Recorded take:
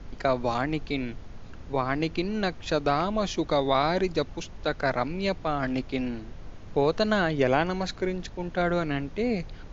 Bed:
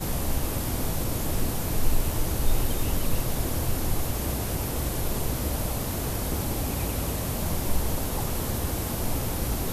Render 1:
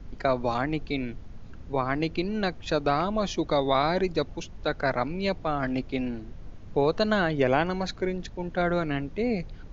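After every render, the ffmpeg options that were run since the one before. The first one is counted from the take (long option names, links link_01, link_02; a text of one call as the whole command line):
ffmpeg -i in.wav -af "afftdn=noise_reduction=6:noise_floor=-43" out.wav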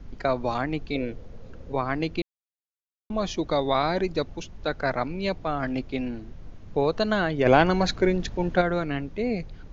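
ffmpeg -i in.wav -filter_complex "[0:a]asettb=1/sr,asplit=3[link_01][link_02][link_03];[link_01]atrim=end=0.954[link_04];[link_02]atrim=start=0.95:end=1.72,asetpts=PTS-STARTPTS,afade=type=in:duration=0.004:curve=qsin,afade=type=out:start_time=0.766:duration=0.004:curve=qsin,equalizer=frequency=500:width=2.9:gain=14.5[link_05];[link_03]atrim=start=1.716[link_06];[link_04][link_05]acrossfade=duration=0.004:curve1=hsin:curve2=qsin[link_07];[link_07][link_06]acrossfade=duration=0.004:curve1=qsin:curve2=hsin,asplit=3[link_08][link_09][link_10];[link_08]afade=type=out:start_time=7.45:duration=0.02[link_11];[link_09]acontrast=77,afade=type=in:start_time=7.45:duration=0.02,afade=type=out:start_time=8.6:duration=0.02[link_12];[link_10]afade=type=in:start_time=8.6:duration=0.02[link_13];[link_11][link_12][link_13]amix=inputs=3:normalize=0,asplit=3[link_14][link_15][link_16];[link_14]atrim=end=2.22,asetpts=PTS-STARTPTS,afade=type=out:start_time=2.216:duration=0.004:curve=hsin[link_17];[link_15]atrim=start=2.22:end=3.1,asetpts=PTS-STARTPTS,volume=0[link_18];[link_16]atrim=start=3.1,asetpts=PTS-STARTPTS,afade=type=in:duration=0.004:curve=hsin[link_19];[link_17][link_18][link_19]concat=n=3:v=0:a=1" out.wav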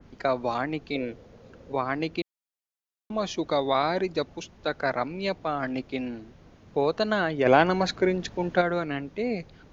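ffmpeg -i in.wav -af "highpass=frequency=210:poles=1,adynamicequalizer=threshold=0.0141:dfrequency=2700:dqfactor=0.7:tfrequency=2700:tqfactor=0.7:attack=5:release=100:ratio=0.375:range=1.5:mode=cutabove:tftype=highshelf" out.wav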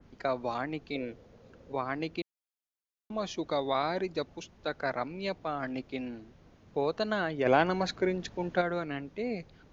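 ffmpeg -i in.wav -af "volume=-5.5dB" out.wav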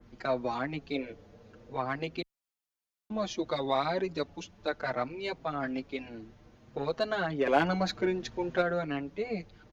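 ffmpeg -i in.wav -filter_complex "[0:a]asplit=2[link_01][link_02];[link_02]asoftclip=type=tanh:threshold=-26dB,volume=-4dB[link_03];[link_01][link_03]amix=inputs=2:normalize=0,asplit=2[link_04][link_05];[link_05]adelay=6.2,afreqshift=0.62[link_06];[link_04][link_06]amix=inputs=2:normalize=1" out.wav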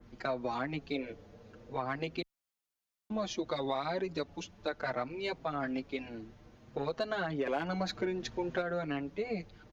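ffmpeg -i in.wav -af "acompressor=threshold=-30dB:ratio=6" out.wav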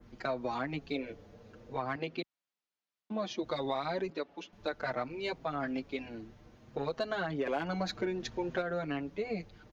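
ffmpeg -i in.wav -filter_complex "[0:a]asettb=1/sr,asplit=3[link_01][link_02][link_03];[link_01]atrim=end=1.964[link_04];[link_02]atrim=start=1.96:end=3.43,asetpts=PTS-STARTPTS,afade=type=in:duration=0.004:curve=qsin,afade=type=out:start_time=1.466:duration=0.004:curve=qsin,highpass=150,lowpass=4800[link_05];[link_03]atrim=start=3.426[link_06];[link_04][link_05]acrossfade=duration=0.004:curve1=hsin:curve2=qsin[link_07];[link_07][link_06]acrossfade=duration=0.004:curve1=qsin:curve2=hsin,asettb=1/sr,asplit=3[link_08][link_09][link_10];[link_08]atrim=end=4.104[link_11];[link_09]atrim=start=4.1:end=4.53,asetpts=PTS-STARTPTS,afade=type=in:duration=0.004:curve=qsin,afade=type=out:start_time=0.426:duration=0.004:curve=qsin,acrossover=split=240 4000:gain=0.0631 1 0.2[link_12][link_13][link_14];[link_12][link_13][link_14]amix=inputs=3:normalize=0[link_15];[link_10]atrim=start=4.526[link_16];[link_11][link_15]acrossfade=duration=0.004:curve1=hsin:curve2=qsin[link_17];[link_17][link_16]acrossfade=duration=0.004:curve1=qsin:curve2=hsin" out.wav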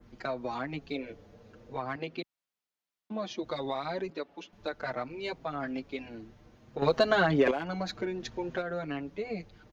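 ffmpeg -i in.wav -filter_complex "[0:a]asplit=3[link_01][link_02][link_03];[link_01]atrim=end=6.822[link_04];[link_02]atrim=start=6.818:end=7.512,asetpts=PTS-STARTPTS,volume=10dB[link_05];[link_03]atrim=start=7.508[link_06];[link_04][link_05]acrossfade=duration=0.004:curve1=hsin:curve2=hsin[link_07];[link_07][link_06]acrossfade=duration=0.004:curve1=hsin:curve2=hsin" out.wav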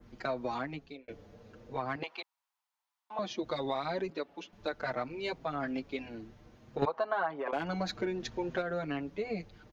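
ffmpeg -i in.wav -filter_complex "[0:a]asettb=1/sr,asplit=3[link_01][link_02][link_03];[link_01]atrim=end=2.034[link_04];[link_02]atrim=start=2.03:end=3.19,asetpts=PTS-STARTPTS,afade=type=in:duration=0.004:curve=qsin,afade=type=out:start_time=1.156:duration=0.004:curve=qsin,highpass=frequency=910:width_type=q:width=4.2[link_05];[link_03]atrim=start=3.186[link_06];[link_04][link_05]acrossfade=duration=0.004:curve1=hsin:curve2=qsin[link_07];[link_07][link_06]acrossfade=duration=0.004:curve1=qsin:curve2=hsin,asettb=1/sr,asplit=3[link_08][link_09][link_10];[link_08]atrim=end=6.854[link_11];[link_09]atrim=start=6.85:end=7.53,asetpts=PTS-STARTPTS,afade=type=in:duration=0.004:curve=qsin,afade=type=out:start_time=0.676:duration=0.004:curve=qsin,bandpass=frequency=950:width_type=q:width=2.6[link_12];[link_10]atrim=start=7.526[link_13];[link_11][link_12]acrossfade=duration=0.004:curve1=hsin:curve2=qsin[link_14];[link_14][link_13]acrossfade=duration=0.004:curve1=qsin:curve2=hsin,asplit=2[link_15][link_16];[link_15]atrim=end=1.08,asetpts=PTS-STARTPTS,afade=type=out:start_time=0.55:duration=0.53[link_17];[link_16]atrim=start=1.08,asetpts=PTS-STARTPTS,afade=type=in:duration=0.004:curve=hsin[link_18];[link_17][link_18]concat=n=2:v=0:a=1" out.wav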